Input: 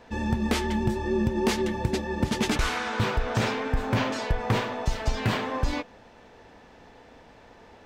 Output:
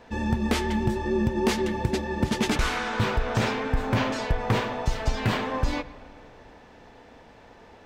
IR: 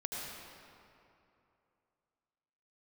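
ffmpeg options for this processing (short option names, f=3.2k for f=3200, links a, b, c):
-filter_complex "[0:a]asplit=2[a][b];[1:a]atrim=start_sample=2205,lowpass=4.3k[c];[b][c]afir=irnorm=-1:irlink=0,volume=-16.5dB[d];[a][d]amix=inputs=2:normalize=0"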